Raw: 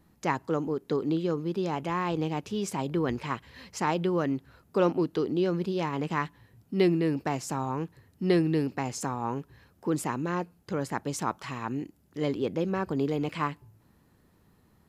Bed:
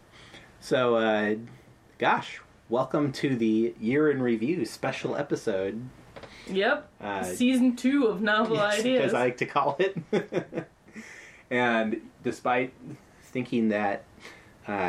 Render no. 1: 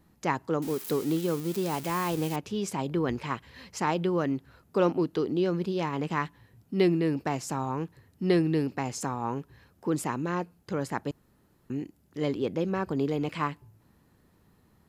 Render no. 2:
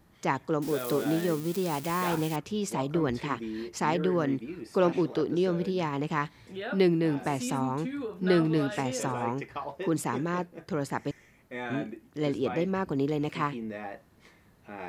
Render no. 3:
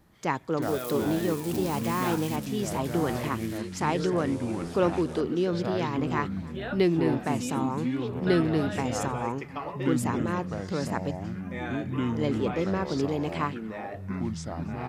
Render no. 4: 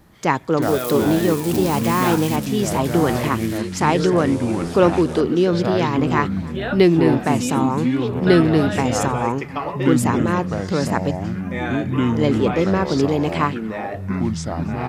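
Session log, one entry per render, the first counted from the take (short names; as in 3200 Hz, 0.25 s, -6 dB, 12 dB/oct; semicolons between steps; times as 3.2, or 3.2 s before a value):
0.62–2.36 switching spikes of -27.5 dBFS; 11.11–11.7 room tone
add bed -12 dB
echoes that change speed 0.244 s, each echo -6 st, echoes 2, each echo -6 dB; echo 0.29 s -23 dB
gain +9.5 dB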